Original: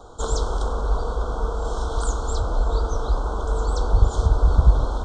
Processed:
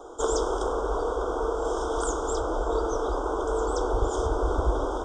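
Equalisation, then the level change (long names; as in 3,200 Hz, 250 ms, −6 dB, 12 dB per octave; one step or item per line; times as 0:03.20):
Butterworth band-reject 4,200 Hz, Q 3.4
low shelf with overshoot 240 Hz −11 dB, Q 3
0.0 dB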